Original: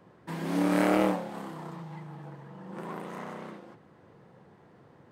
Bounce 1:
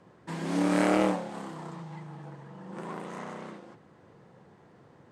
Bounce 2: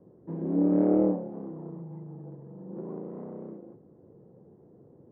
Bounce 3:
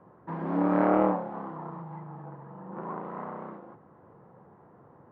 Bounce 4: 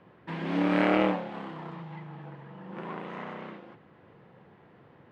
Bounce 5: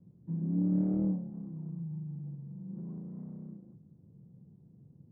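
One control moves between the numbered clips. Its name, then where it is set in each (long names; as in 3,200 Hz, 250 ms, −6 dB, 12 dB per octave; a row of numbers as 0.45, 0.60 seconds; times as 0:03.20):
low-pass with resonance, frequency: 7,900, 420, 1,100, 2,900, 170 Hertz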